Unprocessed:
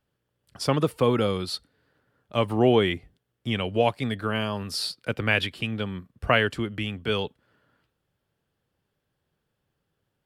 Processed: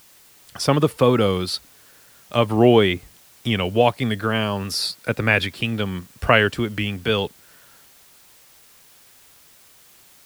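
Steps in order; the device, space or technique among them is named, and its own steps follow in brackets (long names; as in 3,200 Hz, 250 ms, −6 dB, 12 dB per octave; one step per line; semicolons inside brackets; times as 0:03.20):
0:04.75–0:05.57: notch filter 3,000 Hz, Q 5.2
noise-reduction cassette on a plain deck (one half of a high-frequency compander encoder only; tape wow and flutter; white noise bed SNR 29 dB)
level +5.5 dB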